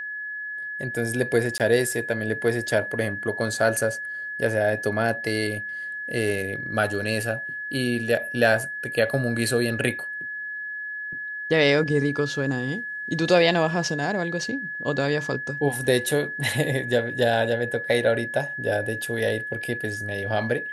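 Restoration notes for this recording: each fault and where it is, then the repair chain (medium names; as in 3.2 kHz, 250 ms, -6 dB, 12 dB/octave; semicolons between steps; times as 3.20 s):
whine 1.7 kHz -30 dBFS
1.58–1.60 s: dropout 18 ms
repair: band-stop 1.7 kHz, Q 30; interpolate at 1.58 s, 18 ms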